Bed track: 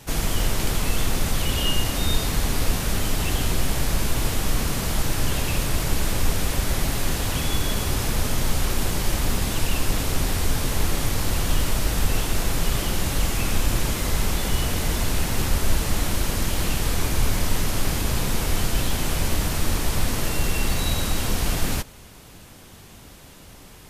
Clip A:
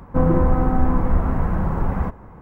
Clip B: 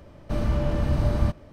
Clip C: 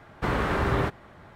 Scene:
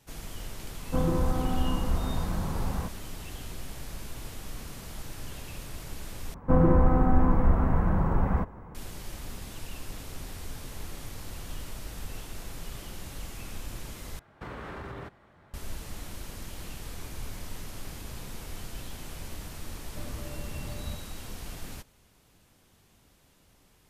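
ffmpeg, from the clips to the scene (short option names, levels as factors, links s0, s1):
-filter_complex "[1:a]asplit=2[s0][s1];[0:a]volume=0.141[s2];[3:a]acompressor=threshold=0.0447:ratio=6:attack=3.2:release=140:knee=1:detection=peak[s3];[s2]asplit=3[s4][s5][s6];[s4]atrim=end=6.344[s7];[s1]atrim=end=2.41,asetpts=PTS-STARTPTS,volume=0.668[s8];[s5]atrim=start=8.746:end=14.194[s9];[s3]atrim=end=1.35,asetpts=PTS-STARTPTS,volume=0.355[s10];[s6]atrim=start=15.536[s11];[s0]atrim=end=2.41,asetpts=PTS-STARTPTS,volume=0.335,afade=t=in:d=0.004:c=hsin,afade=t=out:st=2.406:d=0.004:c=hsin,adelay=780[s12];[2:a]atrim=end=1.52,asetpts=PTS-STARTPTS,volume=0.15,afade=t=in:d=0.004:c=hsin,afade=t=out:st=1.516:d=0.004:c=hsin,adelay=19650[s13];[s7][s8]acrossfade=d=0.004:c1=hsin:c2=hsin[s14];[s14][s9]acrossfade=d=0.004:c1=hsin:c2=hsin[s15];[s15][s10]acrossfade=d=0.004:c1=hsin:c2=hsin[s16];[s16][s11]acrossfade=d=0.004:c1=hsin:c2=hsin[s17];[s17][s12][s13]amix=inputs=3:normalize=0"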